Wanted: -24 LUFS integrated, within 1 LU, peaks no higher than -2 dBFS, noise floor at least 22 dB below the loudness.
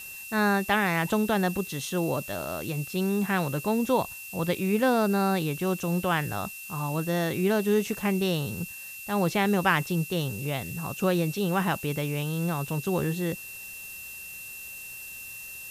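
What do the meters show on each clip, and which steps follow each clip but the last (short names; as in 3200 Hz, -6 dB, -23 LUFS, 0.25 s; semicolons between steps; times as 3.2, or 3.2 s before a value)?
steady tone 2700 Hz; tone level -41 dBFS; noise floor -41 dBFS; noise floor target -50 dBFS; loudness -27.5 LUFS; peak -9.5 dBFS; loudness target -24.0 LUFS
-> notch 2700 Hz, Q 30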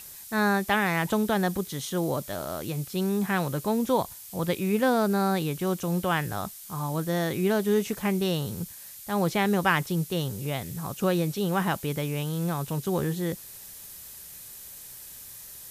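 steady tone none; noise floor -44 dBFS; noise floor target -50 dBFS
-> noise print and reduce 6 dB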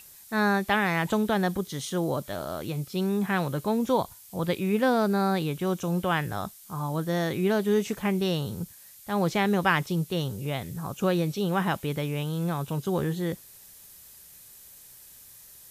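noise floor -50 dBFS; loudness -27.5 LUFS; peak -9.5 dBFS; loudness target -24.0 LUFS
-> gain +3.5 dB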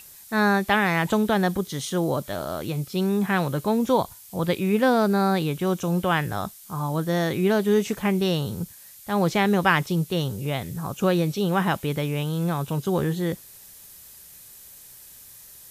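loudness -24.0 LUFS; peak -6.0 dBFS; noise floor -47 dBFS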